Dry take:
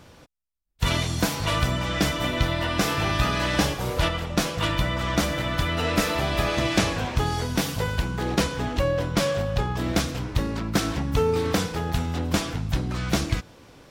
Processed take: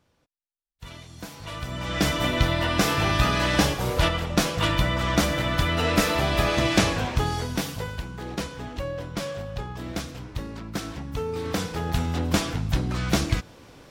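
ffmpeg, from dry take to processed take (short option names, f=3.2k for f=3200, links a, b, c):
-af "volume=10.5dB,afade=t=in:st=1.08:d=0.59:silence=0.375837,afade=t=in:st=1.67:d=0.46:silence=0.266073,afade=t=out:st=6.89:d=1.13:silence=0.334965,afade=t=in:st=11.3:d=0.75:silence=0.354813"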